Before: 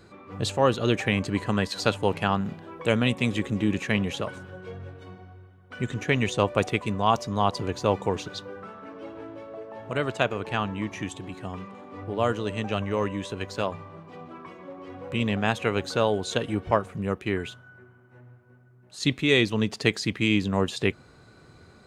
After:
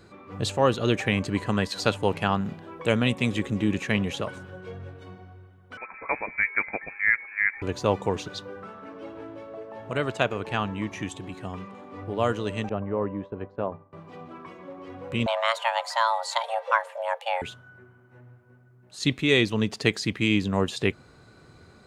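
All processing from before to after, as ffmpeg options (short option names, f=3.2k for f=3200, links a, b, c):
-filter_complex "[0:a]asettb=1/sr,asplit=3[a][b][c];[a]atrim=end=5.774[d];[b]atrim=start=5.77:end=7.62,asetpts=PTS-STARTPTS,afade=t=in:d=0.004:c=qsin,afade=t=out:st=1.846:d=0.004:c=qsin,highpass=f=470:w=0.5412,highpass=f=470:w=1.3066,lowpass=f=2.4k:t=q:w=0.5098,lowpass=f=2.4k:t=q:w=0.6013,lowpass=f=2.4k:t=q:w=0.9,lowpass=f=2.4k:t=q:w=2.563,afreqshift=-2800[e];[c]atrim=start=7.616[f];[d][e]acrossfade=d=0.004:c1=hsin:c2=qsin[g];[g][f]acrossfade=d=0.004:c1=qsin:c2=hsin,asettb=1/sr,asplit=3[h][i][j];[h]atrim=end=12.694[k];[i]atrim=start=12.69:end=13.93,asetpts=PTS-STARTPTS,afade=t=in:d=0.004:c=qsin,afade=t=out:st=1.236:d=0.004:c=qsin,lowpass=1k,lowshelf=f=68:g=-10,agate=range=-33dB:threshold=-37dB:ratio=3:release=100:detection=peak[l];[j]atrim=start=13.926[m];[k][l]acrossfade=d=0.004:c1=hsin:c2=qsin[n];[n][m]acrossfade=d=0.004:c1=qsin:c2=hsin,asettb=1/sr,asplit=3[o][p][q];[o]atrim=end=15.264[r];[p]atrim=start=15.26:end=17.42,asetpts=PTS-STARTPTS,afade=t=in:d=0.004:c=qsin,afade=t=out:st=2.156:d=0.004:c=qsin,asubboost=boost=9:cutoff=61,afreqshift=450[s];[q]atrim=start=17.416[t];[r][s]acrossfade=d=0.004:c1=hsin:c2=qsin[u];[u][t]acrossfade=d=0.004:c1=qsin:c2=hsin"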